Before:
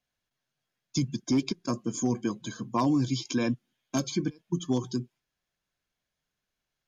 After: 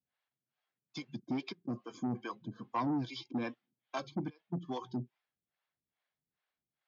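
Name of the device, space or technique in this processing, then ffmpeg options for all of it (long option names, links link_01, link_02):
guitar amplifier with harmonic tremolo: -filter_complex "[0:a]acrossover=split=440[link_01][link_02];[link_01]aeval=exprs='val(0)*(1-1/2+1/2*cos(2*PI*2.4*n/s))':channel_layout=same[link_03];[link_02]aeval=exprs='val(0)*(1-1/2-1/2*cos(2*PI*2.4*n/s))':channel_layout=same[link_04];[link_03][link_04]amix=inputs=2:normalize=0,asoftclip=type=tanh:threshold=-26dB,highpass=86,equalizer=frequency=820:width_type=q:width=4:gain=6,equalizer=frequency=1200:width_type=q:width=4:gain=4,equalizer=frequency=2000:width_type=q:width=4:gain=4,lowpass=frequency=4300:width=0.5412,lowpass=frequency=4300:width=1.3066,volume=-2.5dB"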